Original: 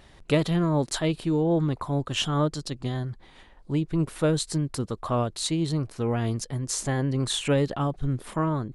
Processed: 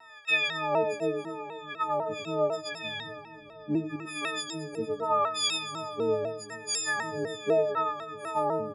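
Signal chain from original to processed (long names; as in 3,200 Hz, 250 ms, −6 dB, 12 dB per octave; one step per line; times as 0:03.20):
every partial snapped to a pitch grid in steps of 6 semitones
in parallel at −1 dB: downward compressor, threshold −29 dBFS, peak gain reduction 15.5 dB
0:02.78–0:03.96: on the sum: low shelf with overshoot 370 Hz +6.5 dB, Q 3
auto-filter band-pass sine 0.78 Hz 390–2,300 Hz
single-tap delay 98 ms −6 dB
on a send at −10 dB: convolution reverb RT60 5.7 s, pre-delay 65 ms
on the sum: pitch modulation by a square or saw wave saw down 4 Hz, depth 100 cents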